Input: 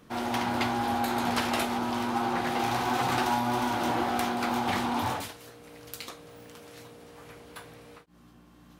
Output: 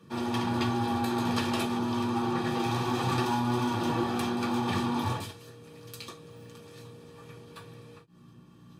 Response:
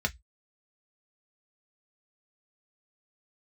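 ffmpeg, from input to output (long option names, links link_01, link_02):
-filter_complex "[1:a]atrim=start_sample=2205,atrim=end_sample=3528,asetrate=79380,aresample=44100[link_01];[0:a][link_01]afir=irnorm=-1:irlink=0,volume=-4.5dB"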